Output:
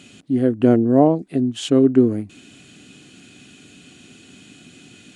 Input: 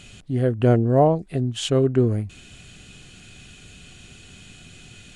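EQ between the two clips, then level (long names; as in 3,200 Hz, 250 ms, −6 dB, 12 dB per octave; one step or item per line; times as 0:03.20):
high-pass filter 150 Hz 12 dB per octave
parametric band 280 Hz +12 dB 0.69 octaves
−1.0 dB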